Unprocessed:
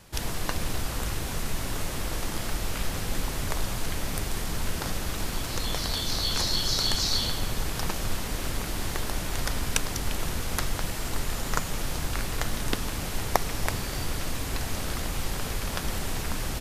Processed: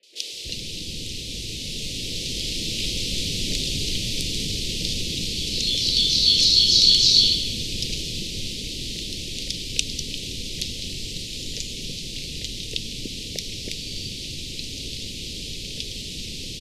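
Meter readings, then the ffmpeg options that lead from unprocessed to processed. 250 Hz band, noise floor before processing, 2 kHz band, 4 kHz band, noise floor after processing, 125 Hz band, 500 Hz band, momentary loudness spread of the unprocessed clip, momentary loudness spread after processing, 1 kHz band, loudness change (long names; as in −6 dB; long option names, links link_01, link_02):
+0.5 dB, −33 dBFS, −2.0 dB, +12.0 dB, −34 dBFS, −1.5 dB, −4.0 dB, 7 LU, 17 LU, below −30 dB, +7.5 dB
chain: -filter_complex "[0:a]crystalizer=i=2.5:c=0,lowpass=frequency=4000:width_type=q:width=1.5,dynaudnorm=framelen=120:gausssize=31:maxgain=8dB,asuperstop=centerf=1100:order=8:qfactor=0.55,lowshelf=frequency=82:gain=-10,acrossover=split=430|1900[link_01][link_02][link_03];[link_03]adelay=30[link_04];[link_01]adelay=320[link_05];[link_05][link_02][link_04]amix=inputs=3:normalize=0"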